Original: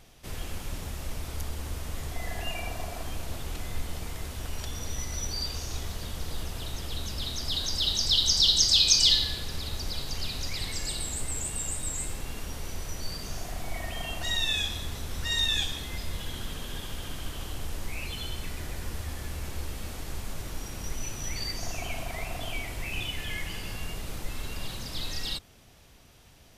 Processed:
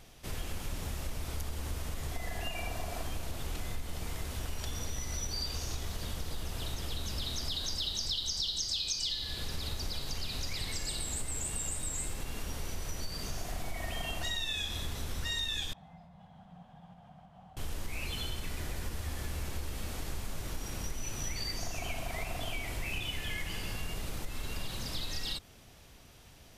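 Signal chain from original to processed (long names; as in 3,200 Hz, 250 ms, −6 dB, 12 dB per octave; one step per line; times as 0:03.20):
downward compressor 10 to 1, threshold −31 dBFS, peak gain reduction 15.5 dB
0:15.73–0:17.57: pair of resonant band-passes 360 Hz, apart 2.1 octaves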